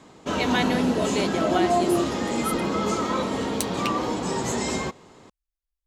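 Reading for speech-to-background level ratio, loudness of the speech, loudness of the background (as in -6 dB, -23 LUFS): -3.5 dB, -29.0 LUFS, -25.5 LUFS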